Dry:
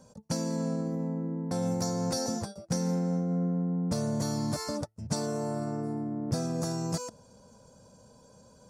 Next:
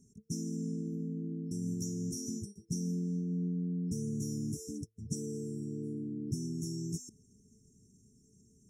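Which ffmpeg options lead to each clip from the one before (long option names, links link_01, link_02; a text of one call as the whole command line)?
ffmpeg -i in.wav -af "afftfilt=real='re*(1-between(b*sr/4096,450,5300))':imag='im*(1-between(b*sr/4096,450,5300))':win_size=4096:overlap=0.75,volume=-5dB" out.wav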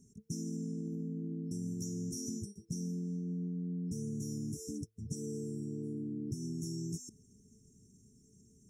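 ffmpeg -i in.wav -af "acompressor=threshold=-36dB:ratio=6,volume=1dB" out.wav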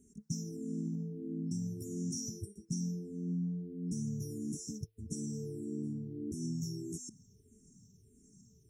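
ffmpeg -i in.wav -filter_complex "[0:a]asplit=2[link_01][link_02];[link_02]afreqshift=-1.6[link_03];[link_01][link_03]amix=inputs=2:normalize=1,volume=3.5dB" out.wav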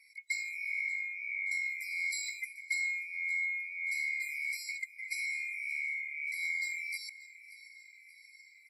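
ffmpeg -i in.wav -af "afftfilt=real='real(if(lt(b,920),b+92*(1-2*mod(floor(b/92),2)),b),0)':imag='imag(if(lt(b,920),b+92*(1-2*mod(floor(b/92),2)),b),0)':win_size=2048:overlap=0.75,aecho=1:1:581|1162|1743|2324|2905:0.133|0.076|0.0433|0.0247|0.0141,aresample=32000,aresample=44100,volume=2dB" out.wav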